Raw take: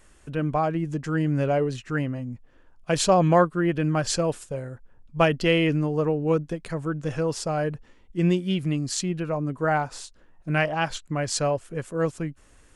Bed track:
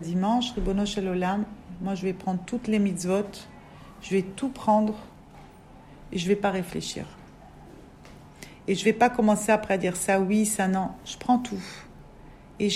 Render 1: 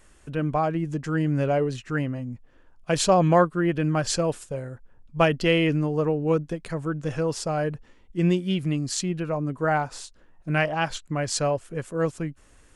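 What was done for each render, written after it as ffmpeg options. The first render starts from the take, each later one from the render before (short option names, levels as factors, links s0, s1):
-af anull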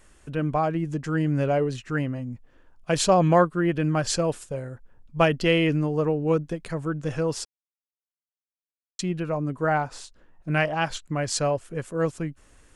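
-filter_complex "[0:a]asettb=1/sr,asplit=3[s0][s1][s2];[s0]atrim=end=9.674[s3];[s1]atrim=start=9.67:end=10.51,asetpts=PTS-STARTPTS,afade=t=in:d=0.004:c=qsin,afade=t=out:st=0.836:d=0.004:c=qsin,highshelf=f=5100:g=-4.5[s4];[s2]atrim=start=10.506[s5];[s3][s4]acrossfade=d=0.004:c1=hsin:c2=qsin[s6];[s6][s5]acrossfade=d=0.004:c1=qsin:c2=hsin,asplit=3[s7][s8][s9];[s7]atrim=end=7.45,asetpts=PTS-STARTPTS,afade=t=out:st=7.446:d=0.004:c=hsin[s10];[s8]atrim=start=7.45:end=8.99,asetpts=PTS-STARTPTS,volume=0[s11];[s9]atrim=start=8.99,asetpts=PTS-STARTPTS,afade=t=in:d=0.004:c=hsin[s12];[s10][s11][s12]concat=n=3:v=0:a=1"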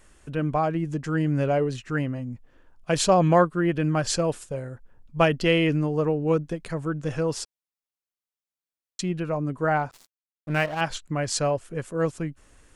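-filter_complex "[0:a]asettb=1/sr,asplit=3[s0][s1][s2];[s0]atrim=end=9.914[s3];[s1]atrim=start=9.91:end=10.81,asetpts=PTS-STARTPTS,afade=t=in:d=0.004:c=qsin,afade=t=out:st=0.896:d=0.004:c=qsin,aeval=exprs='sgn(val(0))*max(abs(val(0))-0.0141,0)':c=same[s4];[s2]atrim=start=10.806[s5];[s3][s4]acrossfade=d=0.004:c1=hsin:c2=qsin[s6];[s6][s5]acrossfade=d=0.004:c1=qsin:c2=hsin"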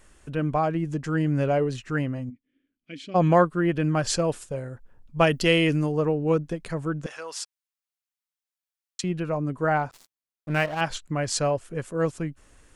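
-filter_complex "[0:a]asplit=3[s0][s1][s2];[s0]afade=t=out:st=2.29:d=0.02[s3];[s1]asplit=3[s4][s5][s6];[s4]bandpass=f=270:t=q:w=8,volume=1[s7];[s5]bandpass=f=2290:t=q:w=8,volume=0.501[s8];[s6]bandpass=f=3010:t=q:w=8,volume=0.355[s9];[s7][s8][s9]amix=inputs=3:normalize=0,afade=t=in:st=2.29:d=0.02,afade=t=out:st=3.14:d=0.02[s10];[s2]afade=t=in:st=3.14:d=0.02[s11];[s3][s10][s11]amix=inputs=3:normalize=0,asettb=1/sr,asplit=3[s12][s13][s14];[s12]atrim=end=5.274[s15];[s13]atrim=start=5.27:end=5.92,asetpts=PTS-STARTPTS,afade=t=in:d=0.004:c=qsin,afade=t=out:st=0.646:d=0.004:c=qsin,aemphasis=mode=production:type=50kf[s16];[s14]atrim=start=5.916[s17];[s15][s16]acrossfade=d=0.004:c1=hsin:c2=qsin[s18];[s18][s17]acrossfade=d=0.004:c1=qsin:c2=hsin,asettb=1/sr,asplit=3[s19][s20][s21];[s19]atrim=end=7.064[s22];[s20]atrim=start=7.06:end=9.04,asetpts=PTS-STARTPTS,afade=t=in:d=0.004:c=qsin,afade=t=out:st=1.976:d=0.004:c=qsin,highpass=990[s23];[s21]atrim=start=9.036[s24];[s22][s23]acrossfade=d=0.004:c1=hsin:c2=qsin[s25];[s25][s24]acrossfade=d=0.004:c1=qsin:c2=hsin"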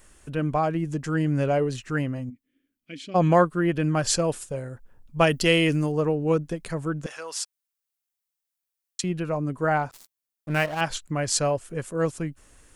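-af "highshelf=f=7800:g=9"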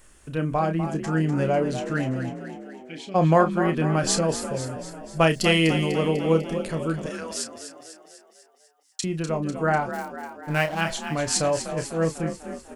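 -filter_complex "[0:a]asplit=2[s0][s1];[s1]adelay=31,volume=0.355[s2];[s0][s2]amix=inputs=2:normalize=0,asplit=8[s3][s4][s5][s6][s7][s8][s9][s10];[s4]adelay=248,afreqshift=40,volume=0.316[s11];[s5]adelay=496,afreqshift=80,volume=0.184[s12];[s6]adelay=744,afreqshift=120,volume=0.106[s13];[s7]adelay=992,afreqshift=160,volume=0.0617[s14];[s8]adelay=1240,afreqshift=200,volume=0.0359[s15];[s9]adelay=1488,afreqshift=240,volume=0.0207[s16];[s10]adelay=1736,afreqshift=280,volume=0.012[s17];[s3][s11][s12][s13][s14][s15][s16][s17]amix=inputs=8:normalize=0"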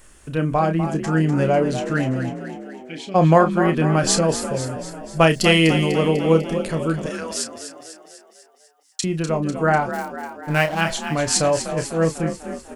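-af "volume=1.68,alimiter=limit=0.708:level=0:latency=1"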